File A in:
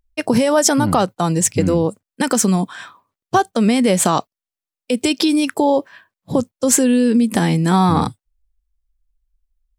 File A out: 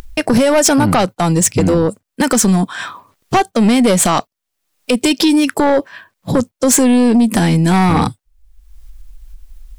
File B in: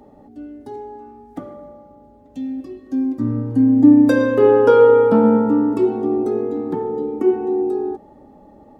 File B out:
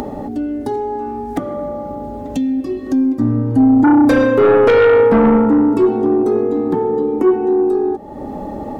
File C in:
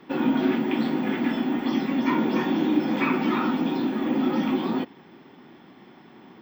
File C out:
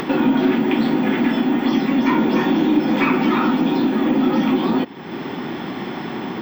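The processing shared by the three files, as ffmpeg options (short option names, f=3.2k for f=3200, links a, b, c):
-af "acompressor=mode=upward:threshold=-18dB:ratio=2.5,aeval=exprs='0.891*(cos(1*acos(clip(val(0)/0.891,-1,1)))-cos(1*PI/2))+0.316*(cos(5*acos(clip(val(0)/0.891,-1,1)))-cos(5*PI/2))+0.0126*(cos(8*acos(clip(val(0)/0.891,-1,1)))-cos(8*PI/2))':c=same,volume=-3dB"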